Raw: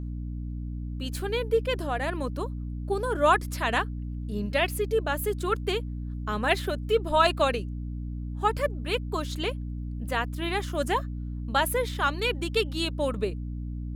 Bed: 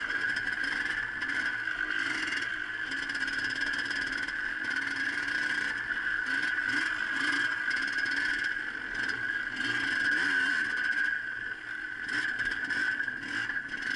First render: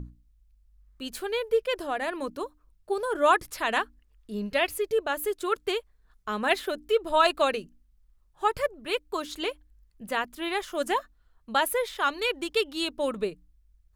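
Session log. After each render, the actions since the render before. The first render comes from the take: notches 60/120/180/240/300 Hz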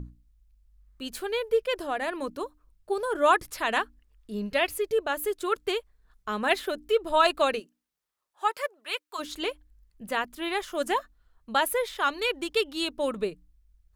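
7.59–9.18 HPF 350 Hz -> 1000 Hz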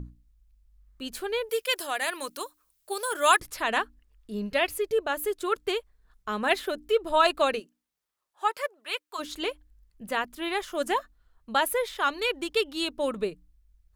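1.49–3.4 tilt +4.5 dB/oct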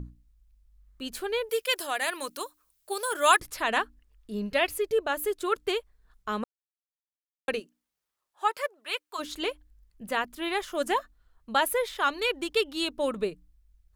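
6.44–7.48 mute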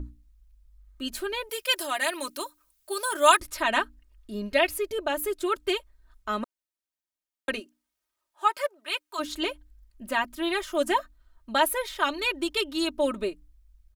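comb 3.2 ms, depth 78%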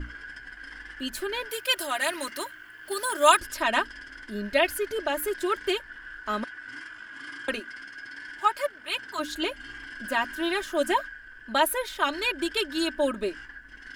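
add bed -11.5 dB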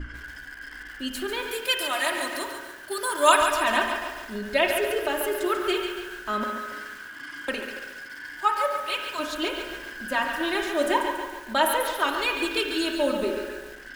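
spring tank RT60 1.2 s, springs 31/57 ms, chirp 60 ms, DRR 4.5 dB; lo-fi delay 0.141 s, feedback 55%, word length 7-bit, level -7 dB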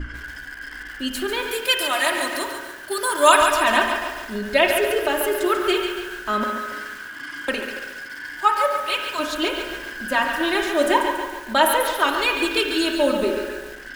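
gain +5 dB; limiter -1 dBFS, peak gain reduction 2 dB

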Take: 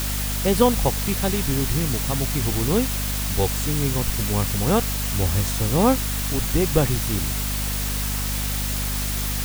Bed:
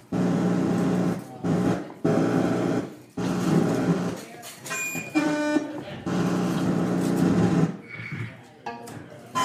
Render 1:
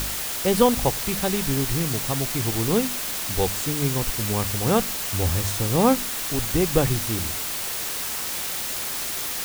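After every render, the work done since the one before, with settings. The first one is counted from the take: de-hum 50 Hz, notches 5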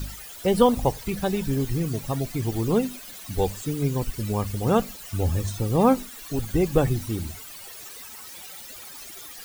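denoiser 16 dB, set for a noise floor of -29 dBFS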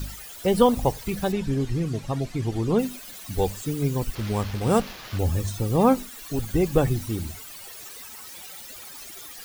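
1.32–2.79 air absorption 61 m; 4.15–5.19 sample-rate reducer 8600 Hz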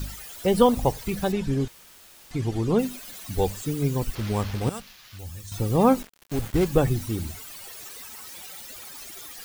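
1.68–2.31 room tone; 4.69–5.52 passive tone stack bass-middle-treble 5-5-5; 6.02–6.67 switching dead time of 0.18 ms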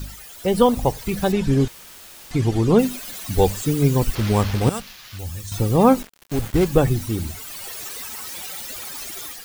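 AGC gain up to 8 dB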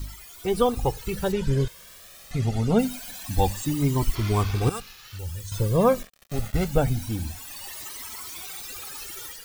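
cascading flanger rising 0.25 Hz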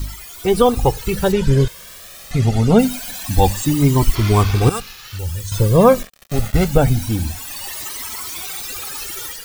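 gain +9 dB; limiter -1 dBFS, peak gain reduction 3 dB

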